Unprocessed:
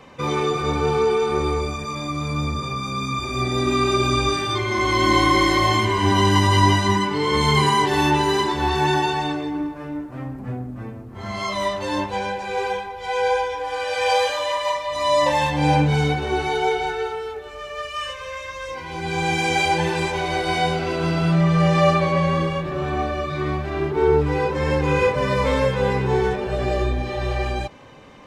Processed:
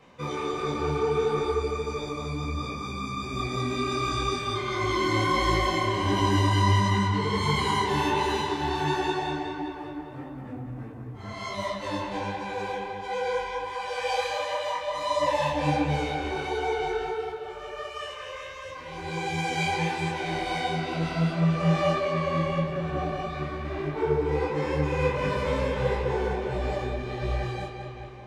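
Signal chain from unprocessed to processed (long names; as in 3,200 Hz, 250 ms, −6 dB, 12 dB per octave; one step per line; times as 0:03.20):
feedback echo with a low-pass in the loop 201 ms, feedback 65%, low-pass 4,800 Hz, level −5 dB
micro pitch shift up and down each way 50 cents
level −5 dB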